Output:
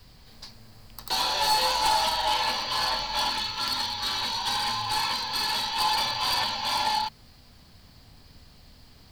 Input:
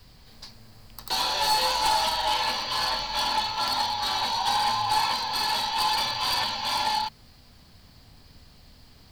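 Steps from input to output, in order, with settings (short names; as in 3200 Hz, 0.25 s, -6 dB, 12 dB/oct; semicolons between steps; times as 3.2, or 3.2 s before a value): 3.29–5.79 bell 740 Hz -15 dB -> -6 dB 0.62 oct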